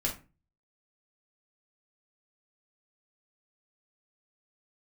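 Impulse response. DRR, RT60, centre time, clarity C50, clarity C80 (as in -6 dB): -2.5 dB, 0.30 s, 20 ms, 9.5 dB, 17.0 dB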